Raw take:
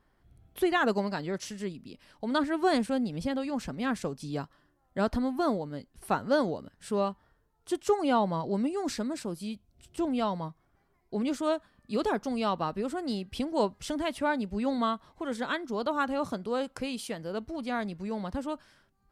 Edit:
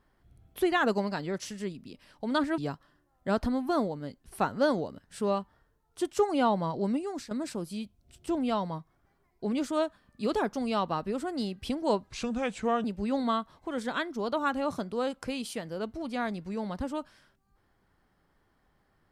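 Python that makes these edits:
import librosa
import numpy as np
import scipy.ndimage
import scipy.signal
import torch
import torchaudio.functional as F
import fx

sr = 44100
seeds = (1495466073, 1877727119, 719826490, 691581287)

y = fx.edit(x, sr, fx.cut(start_s=2.58, length_s=1.7),
    fx.fade_out_to(start_s=8.63, length_s=0.38, floor_db=-12.5),
    fx.speed_span(start_s=13.77, length_s=0.61, speed=0.79), tone=tone)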